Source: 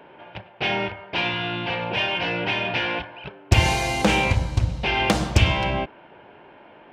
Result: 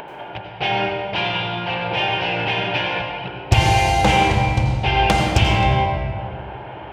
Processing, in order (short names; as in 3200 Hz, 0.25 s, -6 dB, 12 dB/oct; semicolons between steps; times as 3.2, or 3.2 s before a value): thirty-one-band EQ 125 Hz +6 dB, 250 Hz -6 dB, 800 Hz +8 dB, 3150 Hz +3 dB; upward compressor, threshold -27 dBFS; on a send: reverb RT60 2.0 s, pre-delay 80 ms, DRR 2 dB